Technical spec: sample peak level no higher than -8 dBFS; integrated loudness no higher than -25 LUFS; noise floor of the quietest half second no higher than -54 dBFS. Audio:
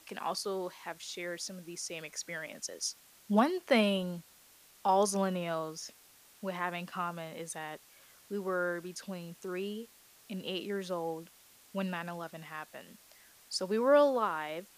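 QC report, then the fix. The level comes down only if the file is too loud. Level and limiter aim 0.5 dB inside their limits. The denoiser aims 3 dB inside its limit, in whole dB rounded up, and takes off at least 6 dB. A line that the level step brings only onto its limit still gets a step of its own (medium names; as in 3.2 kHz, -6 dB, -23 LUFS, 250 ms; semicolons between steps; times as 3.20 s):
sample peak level -13.5 dBFS: pass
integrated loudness -34.0 LUFS: pass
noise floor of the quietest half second -60 dBFS: pass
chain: none needed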